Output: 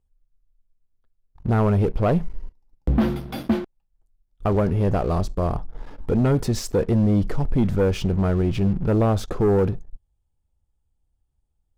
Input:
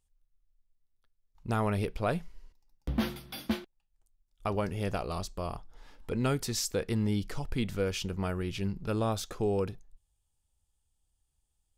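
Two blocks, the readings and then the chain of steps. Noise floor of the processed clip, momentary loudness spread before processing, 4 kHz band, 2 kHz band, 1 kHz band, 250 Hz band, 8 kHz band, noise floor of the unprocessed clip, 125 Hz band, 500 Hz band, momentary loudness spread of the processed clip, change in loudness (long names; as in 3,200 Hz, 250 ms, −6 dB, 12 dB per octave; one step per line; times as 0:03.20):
−73 dBFS, 9 LU, +0.5 dB, +3.5 dB, +7.5 dB, +11.5 dB, −0.5 dB, −78 dBFS, +12.5 dB, +10.5 dB, 9 LU, +11.0 dB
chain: tilt shelving filter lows +9.5 dB, about 1,500 Hz
leveller curve on the samples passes 2
in parallel at +1 dB: brickwall limiter −19.5 dBFS, peak gain reduction 10.5 dB
on the sum: level −5.5 dB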